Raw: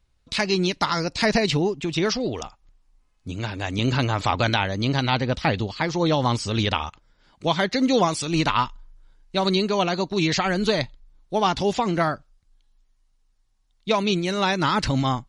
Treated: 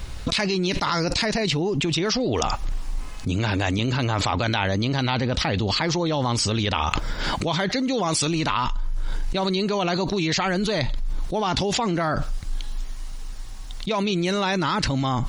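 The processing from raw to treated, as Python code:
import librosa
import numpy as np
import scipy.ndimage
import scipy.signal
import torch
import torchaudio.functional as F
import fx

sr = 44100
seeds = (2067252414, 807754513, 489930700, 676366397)

y = fx.env_flatten(x, sr, amount_pct=100)
y = F.gain(torch.from_numpy(y), -6.5).numpy()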